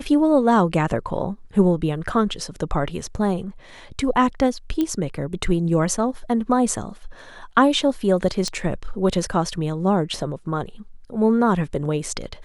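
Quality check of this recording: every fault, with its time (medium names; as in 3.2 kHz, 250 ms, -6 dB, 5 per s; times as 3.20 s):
4.81 s: pop -11 dBFS
8.48 s: pop -13 dBFS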